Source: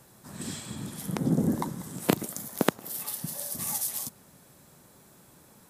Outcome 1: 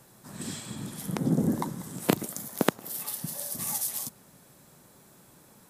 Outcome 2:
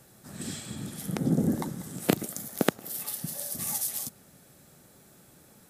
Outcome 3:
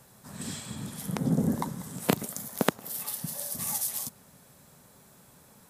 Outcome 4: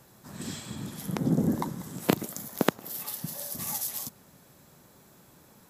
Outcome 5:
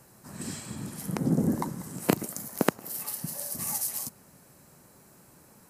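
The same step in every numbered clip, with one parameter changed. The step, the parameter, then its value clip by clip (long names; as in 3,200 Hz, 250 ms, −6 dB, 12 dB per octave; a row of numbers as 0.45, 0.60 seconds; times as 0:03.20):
parametric band, centre frequency: 78, 1,000, 330, 9,200, 3,500 Hertz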